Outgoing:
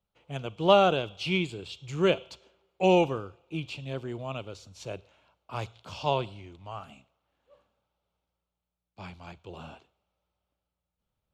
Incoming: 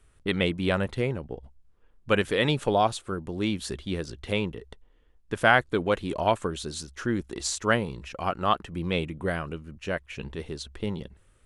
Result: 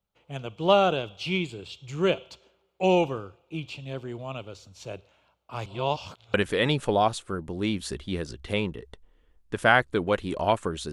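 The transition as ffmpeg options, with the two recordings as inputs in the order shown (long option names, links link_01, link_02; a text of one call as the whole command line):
ffmpeg -i cue0.wav -i cue1.wav -filter_complex "[0:a]apad=whole_dur=10.92,atrim=end=10.92,asplit=2[link_01][link_02];[link_01]atrim=end=5.662[link_03];[link_02]atrim=start=5.658:end=6.342,asetpts=PTS-STARTPTS,areverse[link_04];[1:a]atrim=start=2.128:end=6.71[link_05];[link_03][link_04]acrossfade=duration=0.004:curve1=hsin:curve2=hsin[link_06];[link_06][link_05]acrossfade=duration=0.004:curve1=hsin:curve2=hsin" out.wav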